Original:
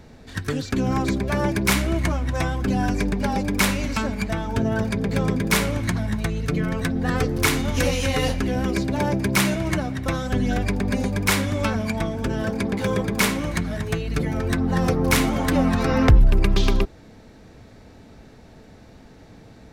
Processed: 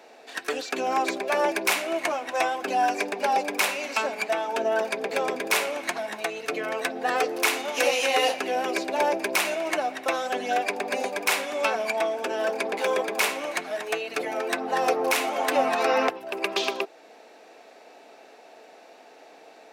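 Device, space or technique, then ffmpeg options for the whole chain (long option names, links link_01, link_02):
laptop speaker: -af "highpass=frequency=380:width=0.5412,highpass=frequency=380:width=1.3066,equalizer=frequency=720:width_type=o:width=0.47:gain=8,equalizer=frequency=2600:width_type=o:width=0.26:gain=7.5,alimiter=limit=-9.5dB:level=0:latency=1:release=469"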